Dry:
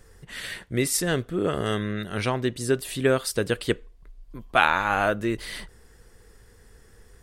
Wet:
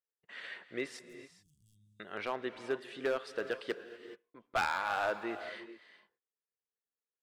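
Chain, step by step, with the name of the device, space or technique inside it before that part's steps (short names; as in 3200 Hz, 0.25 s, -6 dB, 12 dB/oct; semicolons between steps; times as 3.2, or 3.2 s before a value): walkie-talkie (BPF 420–2600 Hz; hard clip -18 dBFS, distortion -10 dB; gate -54 dBFS, range -38 dB); 0.99–2 inverse Chebyshev band-stop 490–1800 Hz, stop band 80 dB; non-linear reverb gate 0.45 s rising, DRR 11.5 dB; gain -7.5 dB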